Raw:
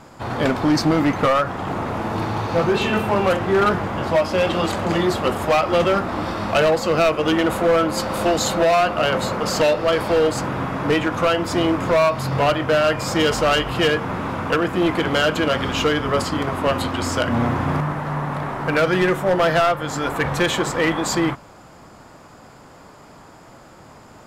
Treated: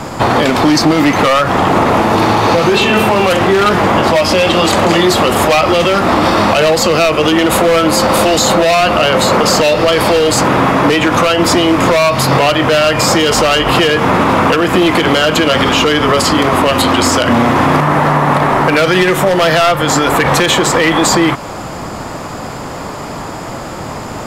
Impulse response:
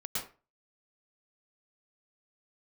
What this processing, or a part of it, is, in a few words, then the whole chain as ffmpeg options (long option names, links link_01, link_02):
mastering chain: -filter_complex "[0:a]equalizer=frequency=1500:width_type=o:width=0.23:gain=-3,acrossover=split=200|2200[link_01][link_02][link_03];[link_01]acompressor=threshold=-40dB:ratio=4[link_04];[link_02]acompressor=threshold=-25dB:ratio=4[link_05];[link_03]acompressor=threshold=-29dB:ratio=4[link_06];[link_04][link_05][link_06]amix=inputs=3:normalize=0,acompressor=threshold=-30dB:ratio=1.5,asoftclip=type=tanh:threshold=-15.5dB,alimiter=level_in=22dB:limit=-1dB:release=50:level=0:latency=1,volume=-1dB"